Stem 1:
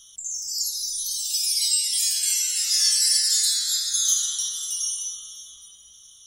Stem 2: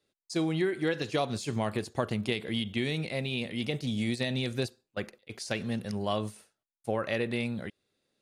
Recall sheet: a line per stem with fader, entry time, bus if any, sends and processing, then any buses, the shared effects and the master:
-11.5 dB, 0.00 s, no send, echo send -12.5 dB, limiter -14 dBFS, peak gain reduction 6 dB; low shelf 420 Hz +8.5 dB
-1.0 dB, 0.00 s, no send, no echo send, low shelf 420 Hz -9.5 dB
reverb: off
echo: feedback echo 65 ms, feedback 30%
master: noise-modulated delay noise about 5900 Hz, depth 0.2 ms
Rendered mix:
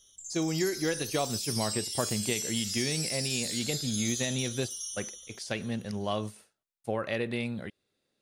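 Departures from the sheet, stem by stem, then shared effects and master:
stem 2: missing low shelf 420 Hz -9.5 dB; master: missing noise-modulated delay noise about 5900 Hz, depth 0.2 ms

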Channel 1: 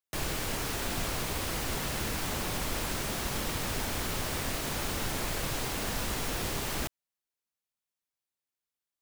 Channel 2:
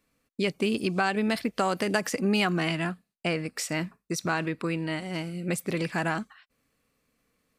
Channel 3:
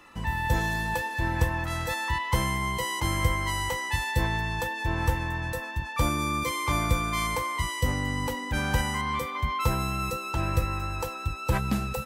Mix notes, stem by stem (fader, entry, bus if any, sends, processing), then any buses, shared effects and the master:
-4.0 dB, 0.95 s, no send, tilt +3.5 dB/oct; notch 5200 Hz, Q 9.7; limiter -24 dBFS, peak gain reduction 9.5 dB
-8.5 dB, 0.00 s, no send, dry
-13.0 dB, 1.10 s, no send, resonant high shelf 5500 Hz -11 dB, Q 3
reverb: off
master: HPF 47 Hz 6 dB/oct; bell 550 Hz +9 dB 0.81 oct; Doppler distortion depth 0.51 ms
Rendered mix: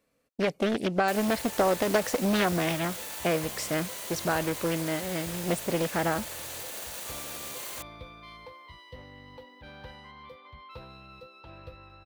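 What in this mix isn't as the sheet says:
stem 2 -8.5 dB -> -2.5 dB; stem 3 -13.0 dB -> -21.0 dB

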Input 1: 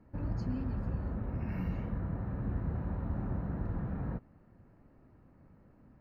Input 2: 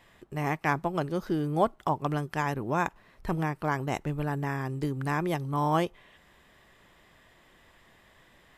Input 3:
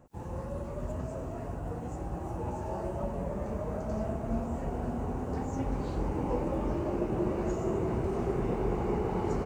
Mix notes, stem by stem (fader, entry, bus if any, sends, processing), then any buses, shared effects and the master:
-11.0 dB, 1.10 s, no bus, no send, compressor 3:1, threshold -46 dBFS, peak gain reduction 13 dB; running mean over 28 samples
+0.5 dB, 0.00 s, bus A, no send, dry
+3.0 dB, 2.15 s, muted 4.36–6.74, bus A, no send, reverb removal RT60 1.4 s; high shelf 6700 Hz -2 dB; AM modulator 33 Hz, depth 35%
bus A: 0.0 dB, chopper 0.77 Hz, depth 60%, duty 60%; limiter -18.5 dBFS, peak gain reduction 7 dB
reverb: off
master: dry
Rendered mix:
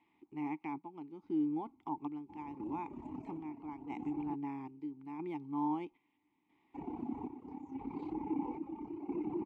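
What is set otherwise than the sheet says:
stem 3 +3.0 dB -> +10.5 dB; master: extra vowel filter u

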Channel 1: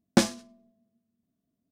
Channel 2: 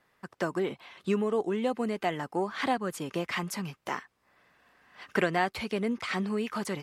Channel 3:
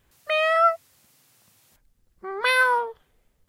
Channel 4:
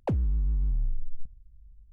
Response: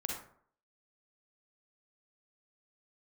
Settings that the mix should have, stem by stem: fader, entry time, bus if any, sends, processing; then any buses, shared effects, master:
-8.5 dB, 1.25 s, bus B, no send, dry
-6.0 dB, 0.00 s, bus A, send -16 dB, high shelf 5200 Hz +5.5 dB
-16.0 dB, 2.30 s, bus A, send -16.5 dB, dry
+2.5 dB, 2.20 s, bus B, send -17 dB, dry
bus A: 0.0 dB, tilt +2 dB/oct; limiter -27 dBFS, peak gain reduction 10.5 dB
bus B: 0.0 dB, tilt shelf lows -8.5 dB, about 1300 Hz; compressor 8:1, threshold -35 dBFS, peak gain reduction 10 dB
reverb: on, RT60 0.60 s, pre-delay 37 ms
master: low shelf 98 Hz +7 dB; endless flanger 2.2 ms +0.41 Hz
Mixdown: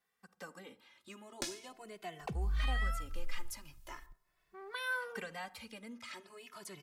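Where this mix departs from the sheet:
stem 1 -8.5 dB -> -1.0 dB; stem 2 -6.0 dB -> -14.5 dB; stem 4: send off

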